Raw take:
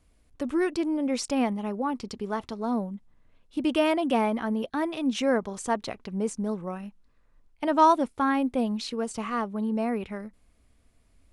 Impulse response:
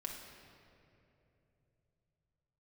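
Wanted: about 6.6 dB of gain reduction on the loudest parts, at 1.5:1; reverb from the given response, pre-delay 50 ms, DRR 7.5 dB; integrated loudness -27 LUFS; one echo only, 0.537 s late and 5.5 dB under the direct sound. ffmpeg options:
-filter_complex "[0:a]acompressor=threshold=-33dB:ratio=1.5,aecho=1:1:537:0.531,asplit=2[a][b];[1:a]atrim=start_sample=2205,adelay=50[c];[b][c]afir=irnorm=-1:irlink=0,volume=-6.5dB[d];[a][d]amix=inputs=2:normalize=0,volume=3.5dB"

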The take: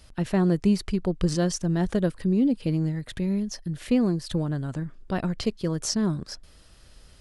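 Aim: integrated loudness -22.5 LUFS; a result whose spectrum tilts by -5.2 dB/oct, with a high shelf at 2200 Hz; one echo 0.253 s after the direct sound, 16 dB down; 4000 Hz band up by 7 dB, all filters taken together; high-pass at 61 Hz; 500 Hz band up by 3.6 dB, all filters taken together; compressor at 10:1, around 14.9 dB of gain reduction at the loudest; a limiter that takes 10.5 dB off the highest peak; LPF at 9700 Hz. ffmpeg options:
-af "highpass=61,lowpass=9.7k,equalizer=f=500:t=o:g=4.5,highshelf=f=2.2k:g=3,equalizer=f=4k:t=o:g=6.5,acompressor=threshold=-32dB:ratio=10,alimiter=level_in=5.5dB:limit=-24dB:level=0:latency=1,volume=-5.5dB,aecho=1:1:253:0.158,volume=16dB"

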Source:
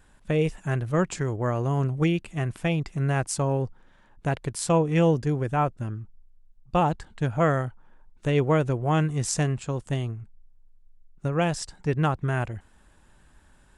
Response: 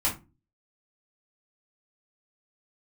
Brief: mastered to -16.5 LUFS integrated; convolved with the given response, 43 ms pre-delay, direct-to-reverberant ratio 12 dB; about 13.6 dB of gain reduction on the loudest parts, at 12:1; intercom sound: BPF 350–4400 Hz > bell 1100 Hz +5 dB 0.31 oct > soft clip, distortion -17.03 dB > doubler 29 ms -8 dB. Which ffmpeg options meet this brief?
-filter_complex "[0:a]acompressor=threshold=-31dB:ratio=12,asplit=2[a][b];[1:a]atrim=start_sample=2205,adelay=43[c];[b][c]afir=irnorm=-1:irlink=0,volume=-21dB[d];[a][d]amix=inputs=2:normalize=0,highpass=350,lowpass=4.4k,equalizer=f=1.1k:t=o:w=0.31:g=5,asoftclip=threshold=-28dB,asplit=2[e][f];[f]adelay=29,volume=-8dB[g];[e][g]amix=inputs=2:normalize=0,volume=25dB"

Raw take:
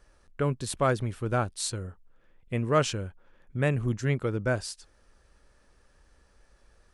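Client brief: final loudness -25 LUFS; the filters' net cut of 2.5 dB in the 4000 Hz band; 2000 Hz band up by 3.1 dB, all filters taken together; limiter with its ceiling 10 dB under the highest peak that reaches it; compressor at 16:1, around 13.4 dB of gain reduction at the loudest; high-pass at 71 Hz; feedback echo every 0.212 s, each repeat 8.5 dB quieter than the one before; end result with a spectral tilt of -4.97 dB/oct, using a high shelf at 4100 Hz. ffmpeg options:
-af "highpass=71,equalizer=f=2k:t=o:g=5,equalizer=f=4k:t=o:g=-7,highshelf=f=4.1k:g=3.5,acompressor=threshold=-31dB:ratio=16,alimiter=level_in=4.5dB:limit=-24dB:level=0:latency=1,volume=-4.5dB,aecho=1:1:212|424|636|848:0.376|0.143|0.0543|0.0206,volume=14dB"

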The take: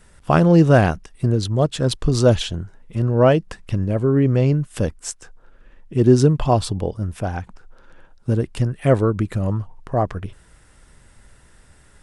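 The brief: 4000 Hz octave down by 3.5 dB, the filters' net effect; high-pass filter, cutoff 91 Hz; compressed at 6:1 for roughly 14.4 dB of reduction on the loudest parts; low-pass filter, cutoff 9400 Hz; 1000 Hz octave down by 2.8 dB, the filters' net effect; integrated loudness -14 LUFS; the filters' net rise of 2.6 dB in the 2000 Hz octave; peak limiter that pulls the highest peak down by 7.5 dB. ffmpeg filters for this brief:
-af "highpass=91,lowpass=9.4k,equalizer=f=1k:t=o:g=-6,equalizer=f=2k:t=o:g=8,equalizer=f=4k:t=o:g=-7,acompressor=threshold=-25dB:ratio=6,volume=18dB,alimiter=limit=-3dB:level=0:latency=1"

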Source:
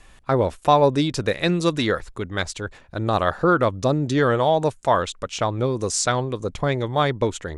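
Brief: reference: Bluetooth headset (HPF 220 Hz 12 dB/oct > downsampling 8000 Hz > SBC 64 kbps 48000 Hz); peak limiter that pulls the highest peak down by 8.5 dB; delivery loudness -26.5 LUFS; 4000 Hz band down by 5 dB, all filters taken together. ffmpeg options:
-af "equalizer=f=4k:t=o:g=-6,alimiter=limit=-12.5dB:level=0:latency=1,highpass=220,aresample=8000,aresample=44100,volume=-1dB" -ar 48000 -c:a sbc -b:a 64k

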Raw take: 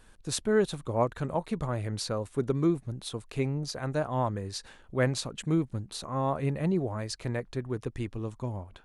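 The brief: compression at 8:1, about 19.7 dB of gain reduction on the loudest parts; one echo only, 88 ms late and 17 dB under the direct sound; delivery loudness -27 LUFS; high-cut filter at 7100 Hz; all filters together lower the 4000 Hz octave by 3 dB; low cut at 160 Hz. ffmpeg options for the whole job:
-af "highpass=160,lowpass=7.1k,equalizer=f=4k:t=o:g=-3,acompressor=threshold=-42dB:ratio=8,aecho=1:1:88:0.141,volume=19.5dB"

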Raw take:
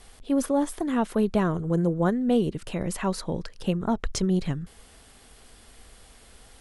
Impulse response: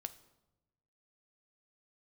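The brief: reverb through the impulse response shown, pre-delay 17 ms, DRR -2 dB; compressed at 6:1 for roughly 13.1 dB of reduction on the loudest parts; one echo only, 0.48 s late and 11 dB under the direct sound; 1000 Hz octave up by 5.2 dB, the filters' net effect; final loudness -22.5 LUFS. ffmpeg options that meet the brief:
-filter_complex "[0:a]equalizer=f=1k:t=o:g=6.5,acompressor=threshold=-32dB:ratio=6,aecho=1:1:480:0.282,asplit=2[a][b];[1:a]atrim=start_sample=2205,adelay=17[c];[b][c]afir=irnorm=-1:irlink=0,volume=5dB[d];[a][d]amix=inputs=2:normalize=0,volume=9.5dB"

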